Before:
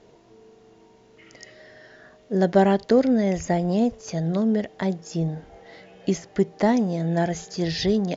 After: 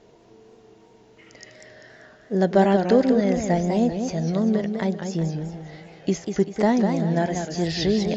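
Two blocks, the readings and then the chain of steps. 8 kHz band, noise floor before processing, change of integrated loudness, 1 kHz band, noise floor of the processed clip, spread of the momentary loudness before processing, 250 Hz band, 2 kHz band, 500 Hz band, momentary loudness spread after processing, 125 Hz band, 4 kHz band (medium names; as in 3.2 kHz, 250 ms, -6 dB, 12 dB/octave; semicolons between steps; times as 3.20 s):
no reading, -55 dBFS, +1.0 dB, +1.0 dB, -53 dBFS, 9 LU, +1.0 dB, +1.0 dB, +1.0 dB, 10 LU, +1.0 dB, +1.0 dB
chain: modulated delay 195 ms, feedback 41%, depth 163 cents, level -6.5 dB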